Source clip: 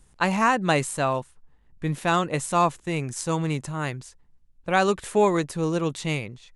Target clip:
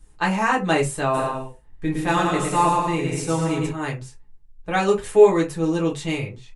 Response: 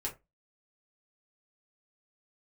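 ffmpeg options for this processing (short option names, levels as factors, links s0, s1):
-filter_complex "[0:a]asplit=3[s0][s1][s2];[s0]afade=t=out:st=1.13:d=0.02[s3];[s1]aecho=1:1:110|187|240.9|278.6|305:0.631|0.398|0.251|0.158|0.1,afade=t=in:st=1.13:d=0.02,afade=t=out:st=3.69:d=0.02[s4];[s2]afade=t=in:st=3.69:d=0.02[s5];[s3][s4][s5]amix=inputs=3:normalize=0[s6];[1:a]atrim=start_sample=2205[s7];[s6][s7]afir=irnorm=-1:irlink=0"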